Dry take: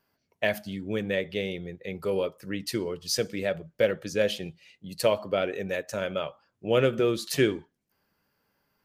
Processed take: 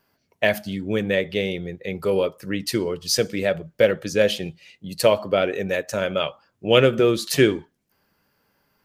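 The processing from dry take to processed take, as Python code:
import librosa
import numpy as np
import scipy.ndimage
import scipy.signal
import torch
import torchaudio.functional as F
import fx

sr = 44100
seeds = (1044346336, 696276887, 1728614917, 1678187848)

y = fx.dynamic_eq(x, sr, hz=3100.0, q=1.0, threshold_db=-46.0, ratio=4.0, max_db=8, at=(6.19, 6.8))
y = y * librosa.db_to_amplitude(6.5)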